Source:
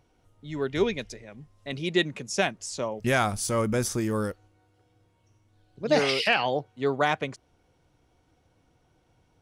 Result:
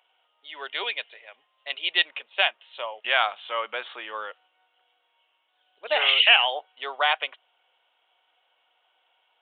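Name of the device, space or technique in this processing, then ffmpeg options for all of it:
musical greeting card: -af "aresample=8000,aresample=44100,highpass=f=680:w=0.5412,highpass=f=680:w=1.3066,equalizer=f=3k:t=o:w=0.45:g=11.5,volume=2.5dB"

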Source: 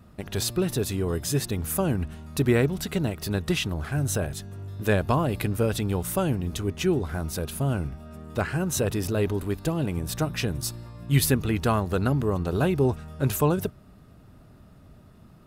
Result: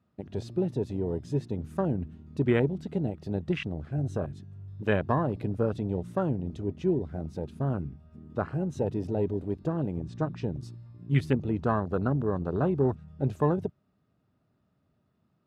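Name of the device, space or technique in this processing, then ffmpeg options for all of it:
over-cleaned archive recording: -filter_complex "[0:a]highpass=100,lowpass=5.3k,afwtdn=0.0316,asettb=1/sr,asplit=3[a][b][c];[a]atrim=end=9.974[d];[b]atrim=start=9.97:end=10.61,asetpts=PTS-STARTPTS,afade=t=in:d=0.004:c=qsin,afade=t=out:st=0.636:d=0.004:c=qsin,lowpass=f=8.3k:w=0.5412,lowpass=f=8.3k:w=1.3066[e];[c]atrim=start=10.606[f];[d][e]acrossfade=d=0.004:c1=hsin:c2=qsin[g];[g][f]acrossfade=d=0.004:c1=qsin:c2=hsin,volume=-2.5dB"

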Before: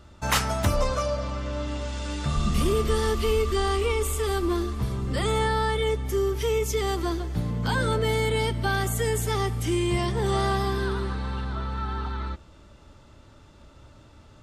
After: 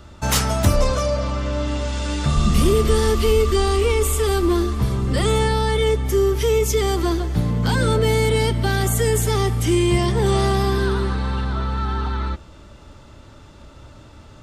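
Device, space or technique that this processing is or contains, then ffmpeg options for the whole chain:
one-band saturation: -filter_complex "[0:a]acrossover=split=540|3900[a][b][c];[b]asoftclip=type=tanh:threshold=-31.5dB[d];[a][d][c]amix=inputs=3:normalize=0,volume=7.5dB"

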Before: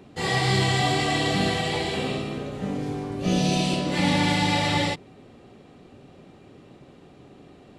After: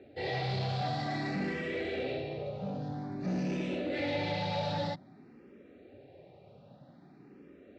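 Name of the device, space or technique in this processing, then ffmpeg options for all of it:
barber-pole phaser into a guitar amplifier: -filter_complex "[0:a]asplit=2[a][b];[b]afreqshift=0.51[c];[a][c]amix=inputs=2:normalize=1,asoftclip=type=tanh:threshold=-25dB,highpass=85,equalizer=f=570:t=q:w=4:g=6,equalizer=f=1.1k:t=q:w=4:g=-9,equalizer=f=3.1k:t=q:w=4:g=-9,lowpass=f=4.4k:w=0.5412,lowpass=f=4.4k:w=1.3066,volume=-3.5dB"

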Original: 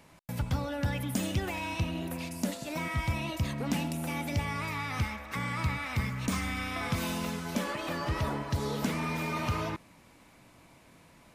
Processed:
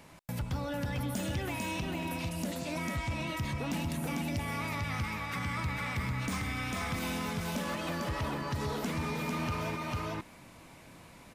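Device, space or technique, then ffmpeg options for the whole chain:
soft clipper into limiter: -filter_complex "[0:a]asettb=1/sr,asplit=3[a][b][c];[a]atrim=end=2.524[d];[b]atrim=start=2.52:end=3.27,asetpts=PTS-STARTPTS,afade=t=in:d=0.004:c=qsin,afade=t=out:st=0.746:d=0.004:c=qsin,lowpass=9.2k[e];[c]atrim=start=3.266[f];[d][e]acrossfade=d=0.004:c1=hsin:c2=qsin[g];[g][f]acrossfade=d=0.004:c1=qsin:c2=hsin,aecho=1:1:448:0.631,asoftclip=type=tanh:threshold=-22.5dB,alimiter=level_in=6dB:limit=-24dB:level=0:latency=1:release=318,volume=-6dB,volume=3dB"

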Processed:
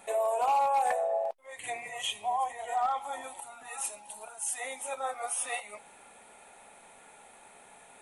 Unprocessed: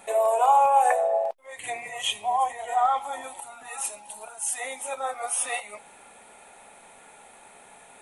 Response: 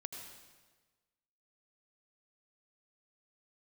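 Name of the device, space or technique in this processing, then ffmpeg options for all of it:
clipper into limiter: -af "asoftclip=type=hard:threshold=-15dB,alimiter=limit=-18dB:level=0:latency=1:release=151,volume=-4dB"

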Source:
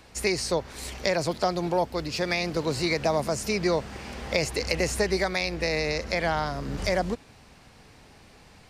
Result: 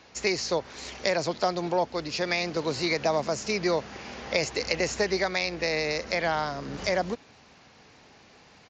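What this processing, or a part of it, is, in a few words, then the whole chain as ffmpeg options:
Bluetooth headset: -af "highpass=f=220:p=1,aresample=16000,aresample=44100" -ar 16000 -c:a sbc -b:a 64k

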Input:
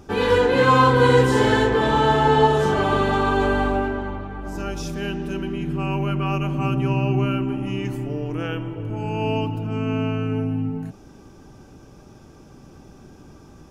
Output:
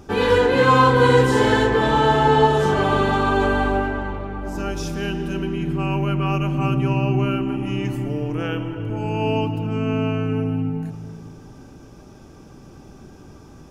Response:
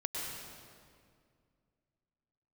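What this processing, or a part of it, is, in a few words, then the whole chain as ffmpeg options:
compressed reverb return: -filter_complex "[0:a]asplit=2[a][b];[1:a]atrim=start_sample=2205[c];[b][c]afir=irnorm=-1:irlink=0,acompressor=threshold=-17dB:ratio=6,volume=-11.5dB[d];[a][d]amix=inputs=2:normalize=0"

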